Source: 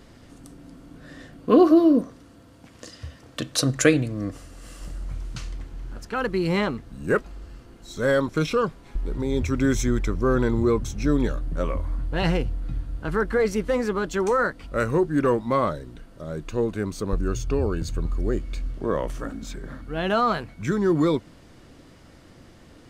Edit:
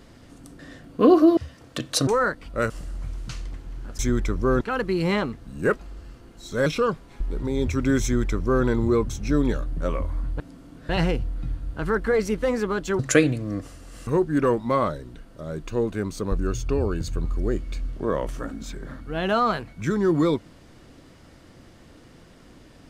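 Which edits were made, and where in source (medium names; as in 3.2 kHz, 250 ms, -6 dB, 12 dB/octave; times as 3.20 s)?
0.59–1.08 s: move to 12.15 s
1.86–2.99 s: delete
3.69–4.77 s: swap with 14.25–14.88 s
8.11–8.41 s: delete
9.78–10.40 s: copy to 6.06 s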